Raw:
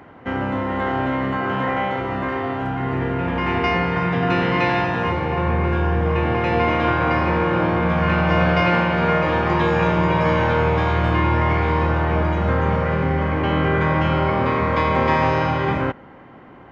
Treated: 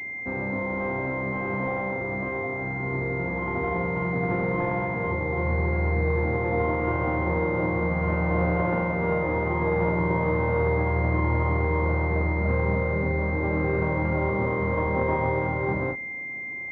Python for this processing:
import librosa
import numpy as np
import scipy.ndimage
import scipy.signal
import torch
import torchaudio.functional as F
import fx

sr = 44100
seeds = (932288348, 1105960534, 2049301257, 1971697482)

y = fx.doubler(x, sr, ms=36.0, db=-5.5)
y = fx.pwm(y, sr, carrier_hz=2100.0)
y = y * 10.0 ** (-6.0 / 20.0)